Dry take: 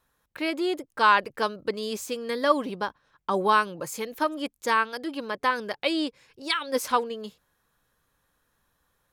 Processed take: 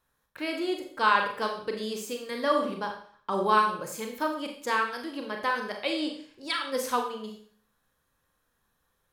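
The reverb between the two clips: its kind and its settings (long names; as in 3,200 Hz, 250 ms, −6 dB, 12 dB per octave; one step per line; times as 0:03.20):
four-comb reverb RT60 0.52 s, combs from 29 ms, DRR 2.5 dB
level −4.5 dB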